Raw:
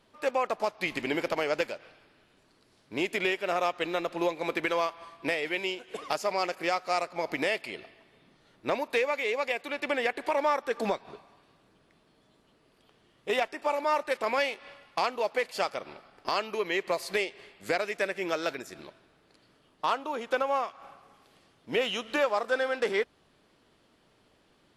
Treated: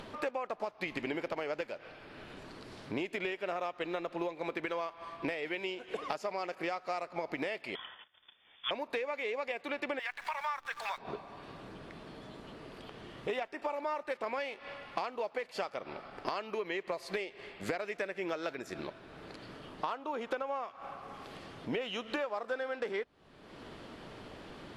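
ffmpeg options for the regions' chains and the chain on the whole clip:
ffmpeg -i in.wav -filter_complex "[0:a]asettb=1/sr,asplit=3[link_01][link_02][link_03];[link_01]atrim=end=7.754[link_04];[link_02]atrim=start=7.75:end=8.71,asetpts=PTS-STARTPTS,afade=type=in:duration=0.004:curve=qsin,afade=type=out:start_time=0.956:duration=0.004:curve=qsin,highpass=frequency=94:width=0.5412,highpass=frequency=94:width=1.3066,agate=range=-26dB:threshold=-59dB:ratio=16:release=100:detection=peak,lowpass=frequency=3100:width_type=q:width=0.5098,lowpass=frequency=3100:width_type=q:width=0.6013,lowpass=frequency=3100:width_type=q:width=0.9,lowpass=frequency=3100:width_type=q:width=2.563,afreqshift=-3700[link_05];[link_03]atrim=start=8.706[link_06];[link_04][link_05]acrossfade=duration=0.004:curve1=hsin:curve2=qsin[link_07];[link_07][link_06]acrossfade=duration=0.004:curve1=qsin:curve2=hsin,asettb=1/sr,asplit=3[link_08][link_09][link_10];[link_08]atrim=end=9.994[link_11];[link_09]atrim=start=9.99:end=10.98,asetpts=PTS-STARTPTS,afade=type=in:duration=0.004:curve=qsin,afade=type=out:start_time=0.986:duration=0.004:curve=qsin,highpass=frequency=1000:width=0.5412,highpass=frequency=1000:width=1.3066,acrusher=bits=9:dc=4:mix=0:aa=0.000001[link_12];[link_10]atrim=start=10.976[link_13];[link_11][link_12]acrossfade=duration=0.004:curve1=hsin:curve2=qsin[link_14];[link_14][link_13]acrossfade=duration=0.004:curve1=qsin:curve2=hsin,acompressor=mode=upward:threshold=-44dB:ratio=2.5,lowpass=frequency=2800:poles=1,acompressor=threshold=-41dB:ratio=6,volume=7dB" out.wav

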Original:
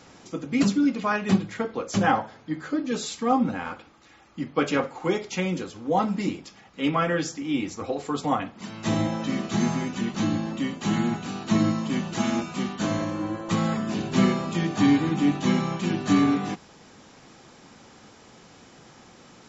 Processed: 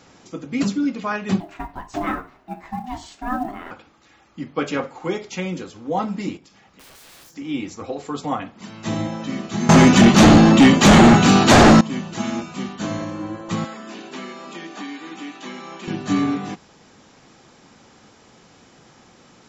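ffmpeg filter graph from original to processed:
ffmpeg -i in.wav -filter_complex "[0:a]asettb=1/sr,asplit=3[link_01][link_02][link_03];[link_01]atrim=end=1.404[link_04];[link_02]atrim=start=1.4:end=3.71,asetpts=PTS-STARTPTS,afade=type=in:duration=0.004:curve=qsin,afade=type=out:start_time=2.306:duration=0.004:curve=qsin,highshelf=frequency=3600:gain=-10.5,acrusher=bits=8:mode=log:mix=0:aa=0.000001,aeval=exprs='val(0)*sin(2*PI*500*n/s)':channel_layout=same[link_05];[link_03]atrim=start=3.706[link_06];[link_04][link_05]acrossfade=duration=0.004:curve1=hsin:curve2=qsin[link_07];[link_07][link_06]acrossfade=duration=0.004:curve1=qsin:curve2=hsin,asettb=1/sr,asplit=3[link_08][link_09][link_10];[link_08]atrim=end=6.374[link_11];[link_09]atrim=start=6.37:end=7.36,asetpts=PTS-STARTPTS,afade=type=in:duration=0.004:curve=qsin,afade=type=out:start_time=0.986:duration=0.004:curve=qsin,aeval=exprs='(mod(25.1*val(0)+1,2)-1)/25.1':channel_layout=same,acompressor=threshold=-48dB:ratio=4:attack=3.2:release=140:knee=1:detection=peak,asplit=2[link_12][link_13];[link_13]adelay=46,volume=-13dB[link_14];[link_12][link_14]amix=inputs=2:normalize=0,atrim=end_sample=43659[link_15];[link_10]atrim=start=7.356[link_16];[link_11][link_15]acrossfade=duration=0.004:curve1=hsin:curve2=qsin[link_17];[link_17][link_16]acrossfade=duration=0.004:curve1=qsin:curve2=hsin,asettb=1/sr,asplit=3[link_18][link_19][link_20];[link_18]atrim=end=9.694[link_21];[link_19]atrim=start=9.69:end=11.81,asetpts=PTS-STARTPTS,afade=type=in:duration=0.004:curve=qsin,afade=type=out:start_time=2.116:duration=0.004:curve=qsin,acontrast=36,aeval=exprs='0.531*sin(PI/2*3.98*val(0)/0.531)':channel_layout=same[link_22];[link_20]atrim=start=11.806[link_23];[link_21][link_22]acrossfade=duration=0.004:curve1=hsin:curve2=qsin[link_24];[link_24][link_23]acrossfade=duration=0.004:curve1=qsin:curve2=hsin,asettb=1/sr,asplit=3[link_25][link_26][link_27];[link_25]atrim=end=13.644[link_28];[link_26]atrim=start=13.64:end=15.88,asetpts=PTS-STARTPTS,afade=type=in:duration=0.004:curve=qsin,afade=type=out:start_time=2.236:duration=0.004:curve=qsin,highpass=frequency=250:width=0.5412,highpass=frequency=250:width=1.3066,acrossover=split=1100|3700[link_29][link_30][link_31];[link_29]acompressor=threshold=-35dB:ratio=4[link_32];[link_30]acompressor=threshold=-38dB:ratio=4[link_33];[link_31]acompressor=threshold=-49dB:ratio=4[link_34];[link_32][link_33][link_34]amix=inputs=3:normalize=0[link_35];[link_27]atrim=start=15.876[link_36];[link_28][link_35]acrossfade=duration=0.004:curve1=hsin:curve2=qsin[link_37];[link_37][link_36]acrossfade=duration=0.004:curve1=qsin:curve2=hsin" out.wav

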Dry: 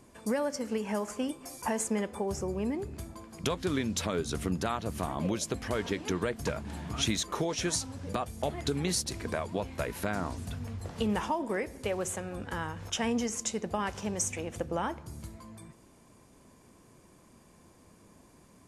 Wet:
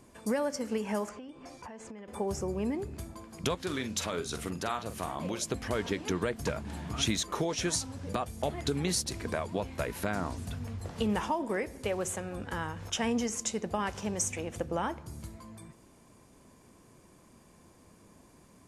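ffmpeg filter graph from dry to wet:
ffmpeg -i in.wav -filter_complex "[0:a]asettb=1/sr,asplit=3[link_01][link_02][link_03];[link_01]atrim=end=1.094[link_04];[link_02]atrim=start=1.09:end=2.08,asetpts=PTS-STARTPTS,afade=type=in:duration=0.004:curve=qsin,afade=type=out:start_time=0.986:duration=0.004:curve=qsin,lowpass=3900,acompressor=threshold=-41dB:ratio=16:attack=3.2:release=140:knee=1:detection=peak[link_05];[link_03]atrim=start=2.076[link_06];[link_04][link_05]acrossfade=duration=0.004:curve1=hsin:curve2=qsin[link_07];[link_07][link_06]acrossfade=duration=0.004:curve1=qsin:curve2=hsin,asettb=1/sr,asplit=3[link_08][link_09][link_10];[link_08]atrim=end=3.554[link_11];[link_09]atrim=start=3.55:end=5.42,asetpts=PTS-STARTPTS,afade=type=in:duration=0.004:curve=qsin,afade=type=out:start_time=1.866:duration=0.004:curve=qsin,lowshelf=frequency=410:gain=-7.5,asplit=2[link_12][link_13];[link_13]adelay=46,volume=-9.5dB[link_14];[link_12][link_14]amix=inputs=2:normalize=0,atrim=end_sample=82467[link_15];[link_10]atrim=start=5.416[link_16];[link_11][link_15]acrossfade=duration=0.004:curve1=hsin:curve2=qsin[link_17];[link_17][link_16]acrossfade=duration=0.004:curve1=qsin:curve2=hsin" out.wav

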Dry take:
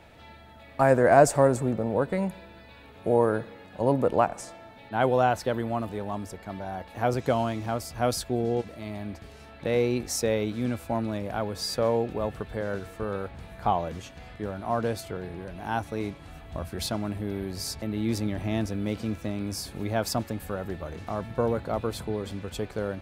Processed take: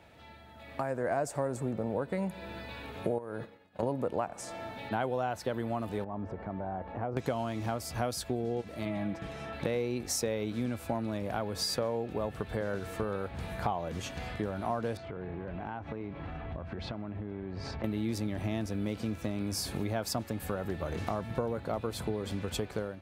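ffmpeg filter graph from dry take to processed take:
ffmpeg -i in.wav -filter_complex "[0:a]asettb=1/sr,asplit=3[link_01][link_02][link_03];[link_01]atrim=end=3.184[link_04];[link_02]atrim=start=3.18:end=3.83,asetpts=PTS-STARTPTS,afade=type=in:duration=0.004:curve=qsin,afade=type=out:start_time=0.646:duration=0.004:curve=qsin,agate=range=-33dB:threshold=-35dB:ratio=3:release=100:detection=peak,acompressor=threshold=-31dB:ratio=4:attack=3.2:release=140:knee=1:detection=peak[link_05];[link_03]atrim=start=3.826[link_06];[link_04][link_05]acrossfade=duration=0.004:curve1=hsin:curve2=qsin[link_07];[link_07][link_06]acrossfade=duration=0.004:curve1=qsin:curve2=hsin,asettb=1/sr,asplit=3[link_08][link_09][link_10];[link_08]atrim=end=6.044[link_11];[link_09]atrim=start=6.04:end=7.17,asetpts=PTS-STARTPTS,afade=type=in:duration=0.004:curve=qsin,afade=type=out:start_time=1.126:duration=0.004:curve=qsin,lowpass=1200,acompressor=threshold=-43dB:ratio=2:attack=3.2:release=140:knee=1:detection=peak[link_12];[link_10]atrim=start=7.166[link_13];[link_11][link_12]acrossfade=duration=0.004:curve1=hsin:curve2=qsin[link_14];[link_14][link_13]acrossfade=duration=0.004:curve1=qsin:curve2=hsin,asettb=1/sr,asplit=3[link_15][link_16][link_17];[link_15]atrim=end=8.854[link_18];[link_16]atrim=start=8.85:end=9.53,asetpts=PTS-STARTPTS,afade=type=in:duration=0.004:curve=qsin,afade=type=out:start_time=0.676:duration=0.004:curve=qsin,aemphasis=mode=reproduction:type=50kf,bandreject=frequency=4500:width=8.3,aecho=1:1:6.1:0.7,atrim=end_sample=29988[link_19];[link_17]atrim=start=9.526[link_20];[link_18][link_19]acrossfade=duration=0.004:curve1=hsin:curve2=qsin[link_21];[link_21][link_20]acrossfade=duration=0.004:curve1=qsin:curve2=hsin,asettb=1/sr,asplit=3[link_22][link_23][link_24];[link_22]atrim=end=14.974[link_25];[link_23]atrim=start=14.97:end=17.84,asetpts=PTS-STARTPTS,afade=type=in:duration=0.004:curve=qsin,afade=type=out:start_time=2.866:duration=0.004:curve=qsin,lowpass=2600,aemphasis=mode=reproduction:type=50fm,acompressor=threshold=-40dB:ratio=12:attack=3.2:release=140:knee=1:detection=peak[link_26];[link_24]atrim=start=17.836[link_27];[link_25][link_26]acrossfade=duration=0.004:curve1=hsin:curve2=qsin[link_28];[link_28][link_27]acrossfade=duration=0.004:curve1=qsin:curve2=hsin,acompressor=threshold=-37dB:ratio=5,highpass=53,dynaudnorm=framelen=530:gausssize=3:maxgain=11.5dB,volume=-5dB" out.wav

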